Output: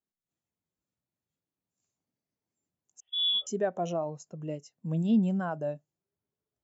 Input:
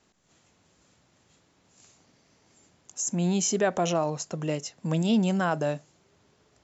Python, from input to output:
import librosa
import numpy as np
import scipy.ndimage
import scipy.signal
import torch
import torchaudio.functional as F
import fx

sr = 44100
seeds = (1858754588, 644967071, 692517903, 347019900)

y = fx.freq_invert(x, sr, carrier_hz=3600, at=(3.0, 3.47))
y = fx.spectral_expand(y, sr, expansion=1.5)
y = F.gain(torch.from_numpy(y), -4.0).numpy()